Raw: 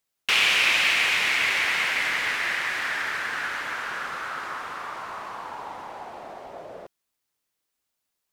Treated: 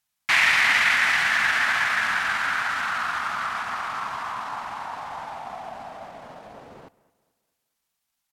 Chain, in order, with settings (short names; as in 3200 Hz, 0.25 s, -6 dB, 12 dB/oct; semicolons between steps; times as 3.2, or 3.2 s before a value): band shelf 530 Hz -11 dB 1.1 oct; pitch shift -4 st; analogue delay 0.216 s, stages 4096, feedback 41%, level -21 dB; gain +2 dB